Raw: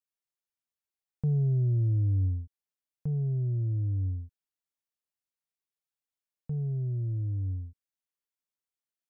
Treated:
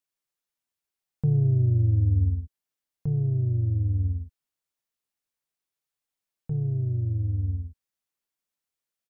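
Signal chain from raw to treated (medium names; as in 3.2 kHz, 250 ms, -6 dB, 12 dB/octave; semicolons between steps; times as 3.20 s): harmony voices -4 st -7 dB; trim +3.5 dB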